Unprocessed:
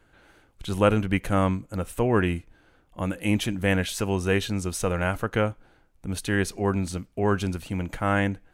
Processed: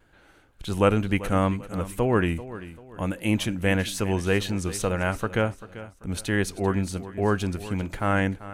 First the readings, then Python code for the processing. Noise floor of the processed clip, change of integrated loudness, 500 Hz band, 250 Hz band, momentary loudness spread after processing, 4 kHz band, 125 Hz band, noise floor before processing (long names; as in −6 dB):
−56 dBFS, 0.0 dB, 0.0 dB, 0.0 dB, 10 LU, 0.0 dB, 0.0 dB, −62 dBFS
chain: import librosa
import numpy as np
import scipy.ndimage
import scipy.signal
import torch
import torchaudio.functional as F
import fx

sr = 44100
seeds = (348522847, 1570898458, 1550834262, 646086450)

p1 = fx.wow_flutter(x, sr, seeds[0], rate_hz=2.1, depth_cents=50.0)
y = p1 + fx.echo_feedback(p1, sr, ms=390, feedback_pct=36, wet_db=-15.5, dry=0)